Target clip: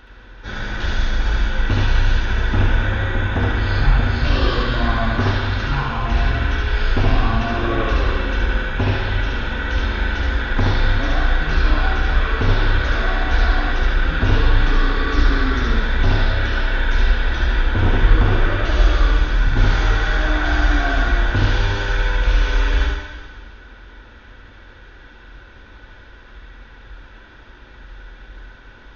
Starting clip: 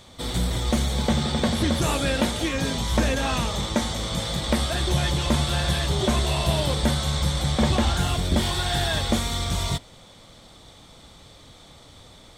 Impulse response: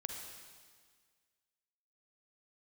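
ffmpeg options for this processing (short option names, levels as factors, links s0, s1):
-filter_complex "[0:a]equalizer=f=100:t=o:w=0.67:g=12,equalizer=f=400:t=o:w=0.67:g=-8,equalizer=f=2500:t=o:w=0.67:g=3,asetrate=18846,aresample=44100,asplit=2[s0][s1];[1:a]atrim=start_sample=2205,adelay=72[s2];[s1][s2]afir=irnorm=-1:irlink=0,volume=1.19[s3];[s0][s3]amix=inputs=2:normalize=0,volume=1.12"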